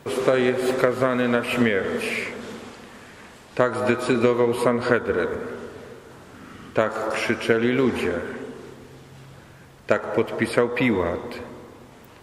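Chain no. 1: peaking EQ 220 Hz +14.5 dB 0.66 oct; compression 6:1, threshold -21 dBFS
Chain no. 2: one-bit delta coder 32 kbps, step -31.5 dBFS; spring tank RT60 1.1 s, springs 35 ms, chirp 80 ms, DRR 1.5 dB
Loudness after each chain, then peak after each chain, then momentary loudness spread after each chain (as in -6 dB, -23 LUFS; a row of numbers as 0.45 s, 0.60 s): -26.5 LUFS, -21.0 LUFS; -7.5 dBFS, -5.0 dBFS; 15 LU, 17 LU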